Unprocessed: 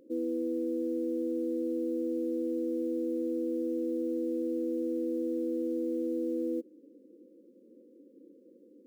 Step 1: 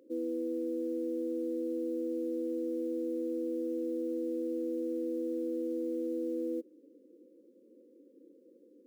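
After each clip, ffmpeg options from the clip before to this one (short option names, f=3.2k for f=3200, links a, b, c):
-af "highpass=270,volume=-1dB"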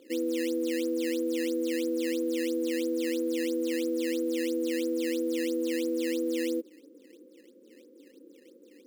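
-af "acrusher=samples=11:mix=1:aa=0.000001:lfo=1:lforange=17.6:lforate=3,volume=5dB"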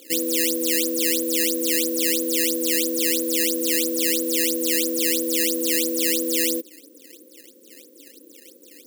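-af "crystalizer=i=8:c=0,volume=2dB"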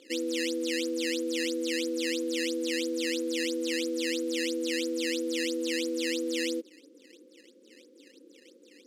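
-af "lowpass=4.6k,volume=-5dB"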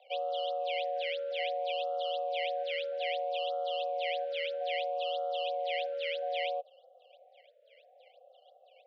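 -af "aeval=exprs='0.141*(cos(1*acos(clip(val(0)/0.141,-1,1)))-cos(1*PI/2))+0.00501*(cos(7*acos(clip(val(0)/0.141,-1,1)))-cos(7*PI/2))':c=same,highpass=f=240:t=q:w=0.5412,highpass=f=240:t=q:w=1.307,lowpass=f=3.1k:t=q:w=0.5176,lowpass=f=3.1k:t=q:w=0.7071,lowpass=f=3.1k:t=q:w=1.932,afreqshift=230,afftfilt=real='re*(1-between(b*sr/1024,940*pow(2000/940,0.5+0.5*sin(2*PI*0.62*pts/sr))/1.41,940*pow(2000/940,0.5+0.5*sin(2*PI*0.62*pts/sr))*1.41))':imag='im*(1-between(b*sr/1024,940*pow(2000/940,0.5+0.5*sin(2*PI*0.62*pts/sr))/1.41,940*pow(2000/940,0.5+0.5*sin(2*PI*0.62*pts/sr))*1.41))':win_size=1024:overlap=0.75,volume=-1dB"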